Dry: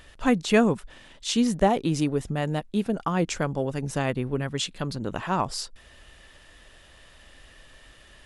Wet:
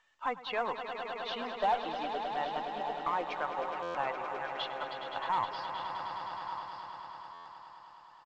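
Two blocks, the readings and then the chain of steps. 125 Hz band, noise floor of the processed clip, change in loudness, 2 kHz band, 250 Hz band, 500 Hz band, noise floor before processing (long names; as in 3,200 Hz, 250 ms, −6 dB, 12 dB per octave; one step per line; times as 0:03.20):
−27.0 dB, −55 dBFS, −9.5 dB, −6.0 dB, −22.5 dB, −10.0 dB, −53 dBFS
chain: spectral dynamics exaggerated over time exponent 1.5
high-pass with resonance 890 Hz, resonance Q 3.5
brickwall limiter −19 dBFS, peak gain reduction 11 dB
high-shelf EQ 2,100 Hz −7.5 dB
single-tap delay 1,172 ms −12 dB
tube saturation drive 19 dB, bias 0.35
Butterworth low-pass 4,200 Hz 36 dB per octave
echo that builds up and dies away 104 ms, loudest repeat 5, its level −10.5 dB
buffer that repeats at 0:03.82/0:07.33, samples 512, times 10
mu-law 128 kbit/s 16,000 Hz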